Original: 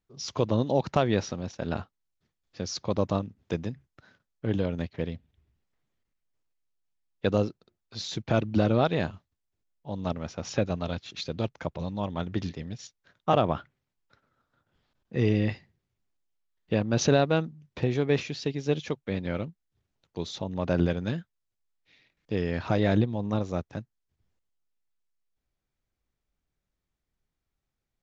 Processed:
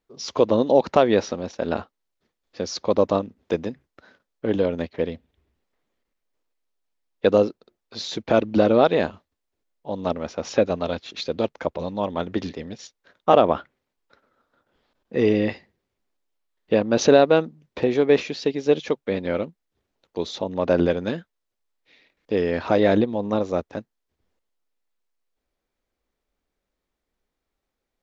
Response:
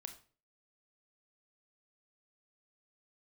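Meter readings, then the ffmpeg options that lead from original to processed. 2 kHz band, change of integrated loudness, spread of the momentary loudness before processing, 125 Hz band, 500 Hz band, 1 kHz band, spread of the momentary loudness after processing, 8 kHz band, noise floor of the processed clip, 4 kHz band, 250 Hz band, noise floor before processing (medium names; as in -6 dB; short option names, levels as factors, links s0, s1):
+5.5 dB, +6.5 dB, 13 LU, -3.5 dB, +9.5 dB, +7.0 dB, 14 LU, no reading, -82 dBFS, +4.5 dB, +5.0 dB, -84 dBFS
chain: -af "equalizer=f=125:t=o:w=1:g=-9,equalizer=f=250:t=o:w=1:g=5,equalizer=f=500:t=o:w=1:g=8,equalizer=f=1000:t=o:w=1:g=4,equalizer=f=2000:t=o:w=1:g=3,equalizer=f=4000:t=o:w=1:g=3,volume=1.12"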